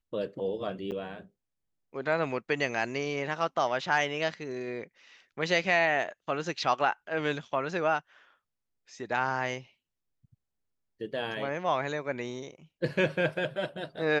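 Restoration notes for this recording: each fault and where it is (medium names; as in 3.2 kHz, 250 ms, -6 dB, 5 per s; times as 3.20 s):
0.91–0.92 s: dropout 8.5 ms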